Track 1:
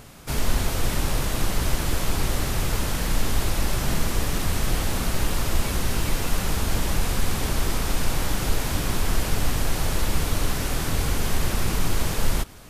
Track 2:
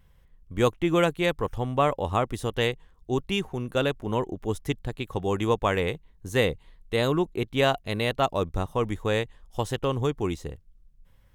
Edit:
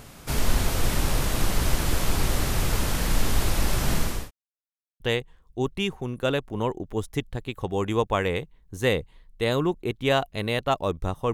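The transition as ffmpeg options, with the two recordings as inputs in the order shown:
-filter_complex "[0:a]apad=whole_dur=11.33,atrim=end=11.33,asplit=2[s0][s1];[s0]atrim=end=4.31,asetpts=PTS-STARTPTS,afade=t=out:st=3.86:d=0.45:c=qsin[s2];[s1]atrim=start=4.31:end=5,asetpts=PTS-STARTPTS,volume=0[s3];[1:a]atrim=start=2.52:end=8.85,asetpts=PTS-STARTPTS,afade=t=in:d=0.004:c=hsin[s4];[s2][s3][s4]concat=n=3:v=0:a=1"

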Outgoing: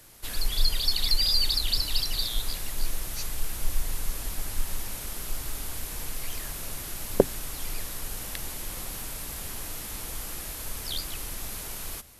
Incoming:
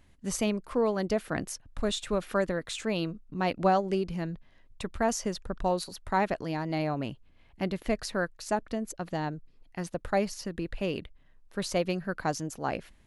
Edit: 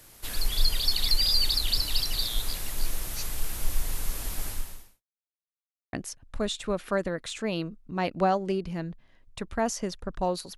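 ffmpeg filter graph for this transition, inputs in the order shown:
-filter_complex "[0:a]apad=whole_dur=10.57,atrim=end=10.57,asplit=2[s0][s1];[s0]atrim=end=5.03,asetpts=PTS-STARTPTS,afade=t=out:st=4.48:d=0.55:c=qua[s2];[s1]atrim=start=5.03:end=5.93,asetpts=PTS-STARTPTS,volume=0[s3];[1:a]atrim=start=1.36:end=6,asetpts=PTS-STARTPTS,afade=t=in:d=0.004:c=hsin[s4];[s2][s3][s4]concat=n=3:v=0:a=1"

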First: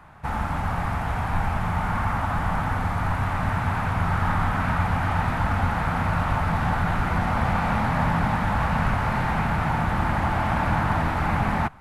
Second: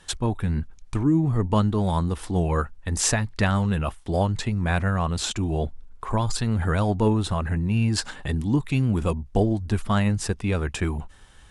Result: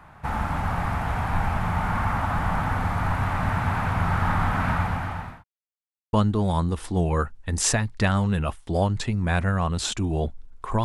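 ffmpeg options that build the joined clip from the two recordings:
-filter_complex "[0:a]apad=whole_dur=10.84,atrim=end=10.84,asplit=2[s0][s1];[s0]atrim=end=5.44,asetpts=PTS-STARTPTS,afade=t=out:st=4.71:d=0.73[s2];[s1]atrim=start=5.44:end=6.13,asetpts=PTS-STARTPTS,volume=0[s3];[1:a]atrim=start=1.52:end=6.23,asetpts=PTS-STARTPTS,afade=t=in:d=0.004:c=hsin[s4];[s2][s3][s4]concat=n=3:v=0:a=1"

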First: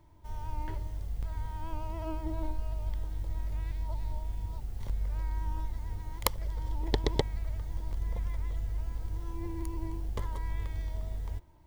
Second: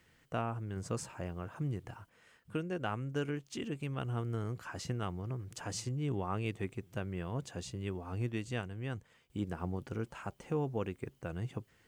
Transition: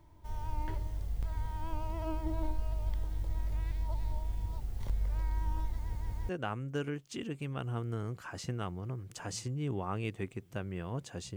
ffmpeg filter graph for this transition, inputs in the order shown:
-filter_complex "[0:a]apad=whole_dur=11.36,atrim=end=11.36,asplit=3[s0][s1][s2];[s0]atrim=end=5.952[s3];[s1]atrim=start=5.778:end=5.952[s4];[s2]atrim=start=5.778:end=5.952[s5];[1:a]atrim=start=2.698:end=7.77[s6];[s3][s4]acrossfade=d=0.004:c1=hsin:c2=hsin[s7];[s7][s5]acrossfade=d=0.004:c1=hsin:c2=hsin[s8];[s8][s6]acrossfade=d=0.004:c1=hsin:c2=hsin"

